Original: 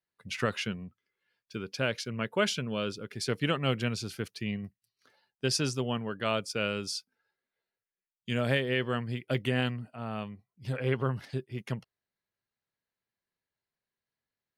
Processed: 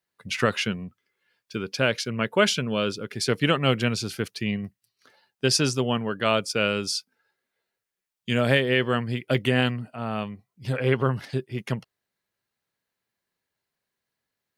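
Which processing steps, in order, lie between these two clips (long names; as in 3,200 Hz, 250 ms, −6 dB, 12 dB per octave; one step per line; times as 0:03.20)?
low-shelf EQ 79 Hz −6.5 dB
level +7.5 dB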